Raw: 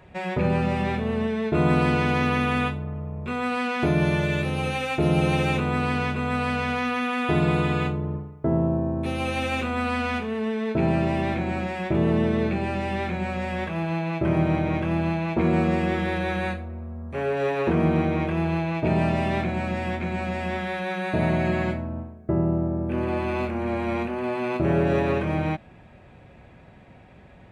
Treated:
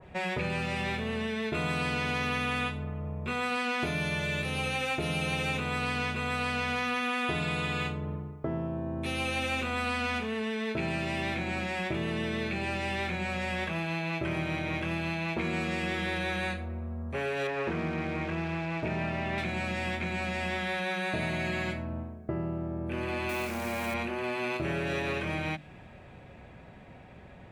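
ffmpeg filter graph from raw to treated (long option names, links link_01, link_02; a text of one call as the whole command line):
ffmpeg -i in.wav -filter_complex "[0:a]asettb=1/sr,asplit=3[link_01][link_02][link_03];[link_01]atrim=end=17.474[link_04];[link_02]atrim=start=17.47:end=19.38,asetpts=PTS-STARTPTS,afade=type=in:duration=0.004:curve=qsin,afade=type=out:start_time=1.906:duration=0.004:curve=qsin,acrusher=bits=7:dc=4:mix=0:aa=0.000001,lowpass=2000[link_05];[link_03]atrim=start=19.376[link_06];[link_04][link_05]acrossfade=duration=0.004:curve1=hsin:curve2=qsin[link_07];[link_07][link_06]acrossfade=duration=0.004:curve1=qsin:curve2=hsin,asettb=1/sr,asplit=3[link_08][link_09][link_10];[link_08]atrim=end=23.294[link_11];[link_09]atrim=start=23.29:end=23.94,asetpts=PTS-STARTPTS,afade=type=in:duration=0.004:curve=qsin,afade=type=out:start_time=0.646:duration=0.004:curve=qsin,lowshelf=frequency=89:gain=-8,acrusher=bits=8:dc=4:mix=0:aa=0.000001[link_12];[link_10]atrim=start=23.936[link_13];[link_11][link_12]acrossfade=duration=0.004:curve1=hsin:curve2=qsin[link_14];[link_14][link_13]acrossfade=duration=0.004:curve1=qsin:curve2=hsin,bandreject=frequency=50:width_type=h:width=6,bandreject=frequency=100:width_type=h:width=6,bandreject=frequency=150:width_type=h:width=6,bandreject=frequency=200:width_type=h:width=6,bandreject=frequency=250:width_type=h:width=6,bandreject=frequency=300:width_type=h:width=6,bandreject=frequency=350:width_type=h:width=6,acrossover=split=1600|3400[link_15][link_16][link_17];[link_15]acompressor=threshold=-32dB:ratio=4[link_18];[link_16]acompressor=threshold=-39dB:ratio=4[link_19];[link_17]acompressor=threshold=-46dB:ratio=4[link_20];[link_18][link_19][link_20]amix=inputs=3:normalize=0,adynamicequalizer=threshold=0.00631:dfrequency=1600:dqfactor=0.7:tfrequency=1600:tqfactor=0.7:attack=5:release=100:ratio=0.375:range=2:mode=boostabove:tftype=highshelf" out.wav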